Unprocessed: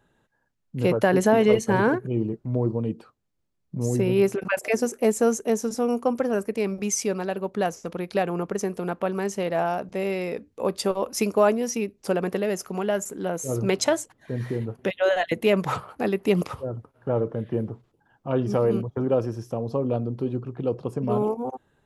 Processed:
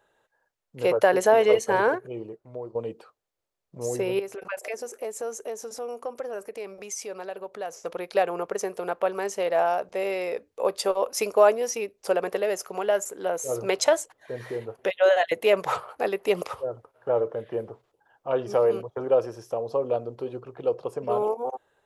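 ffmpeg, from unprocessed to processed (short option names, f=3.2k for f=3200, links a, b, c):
-filter_complex "[0:a]asettb=1/sr,asplit=3[a][b][c];[a]atrim=end=4.194[d];[b]atrim=start=4.19:end=7.84,asetpts=PTS-STARTPTS,afade=t=in:d=0.004:c=qsin,afade=t=out:st=3.646:d=0.004:c=qsin,acompressor=threshold=-34dB:ratio=2.5:attack=3.2:release=140:knee=1:detection=peak[e];[c]atrim=start=7.836[f];[d][e]acrossfade=d=0.004:c1=hsin:c2=qsin[g];[g][f]acrossfade=d=0.004:c1=qsin:c2=hsin,asplit=2[h][i];[h]atrim=end=2.75,asetpts=PTS-STARTPTS,afade=t=out:st=1.78:d=0.97:silence=0.266073[j];[i]atrim=start=2.75,asetpts=PTS-STARTPTS,afade=t=in:d=0.004:c=hsin:silence=0.266073[k];[j][k]concat=n=2:v=0:a=1,lowshelf=f=340:t=q:w=1.5:g=-12.5"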